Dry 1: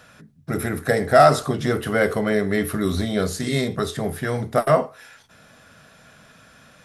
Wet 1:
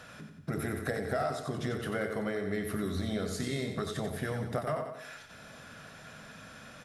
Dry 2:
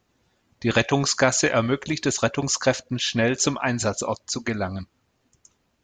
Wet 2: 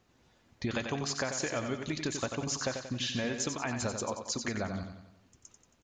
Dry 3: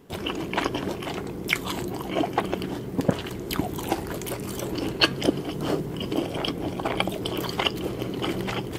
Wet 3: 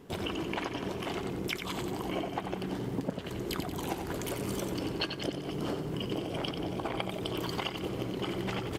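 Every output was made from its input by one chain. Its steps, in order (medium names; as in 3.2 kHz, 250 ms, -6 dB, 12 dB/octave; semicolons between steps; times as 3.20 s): treble shelf 11 kHz -6 dB; compression 6:1, threshold -32 dBFS; on a send: feedback delay 91 ms, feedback 49%, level -7 dB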